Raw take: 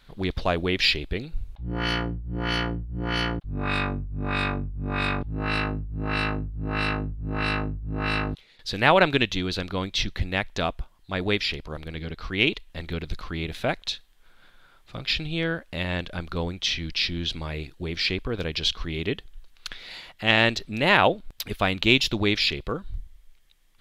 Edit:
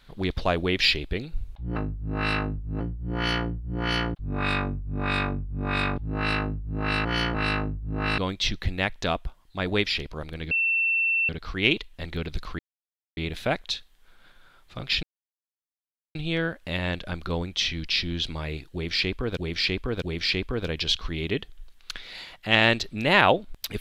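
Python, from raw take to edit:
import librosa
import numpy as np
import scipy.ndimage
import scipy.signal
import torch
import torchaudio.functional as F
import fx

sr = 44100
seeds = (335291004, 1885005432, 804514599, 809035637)

y = fx.edit(x, sr, fx.swap(start_s=1.76, length_s=0.29, other_s=6.3, other_length_s=1.04),
    fx.cut(start_s=8.18, length_s=1.54),
    fx.insert_tone(at_s=12.05, length_s=0.78, hz=2690.0, db=-20.5),
    fx.insert_silence(at_s=13.35, length_s=0.58),
    fx.insert_silence(at_s=15.21, length_s=1.12),
    fx.repeat(start_s=17.78, length_s=0.65, count=3), tone=tone)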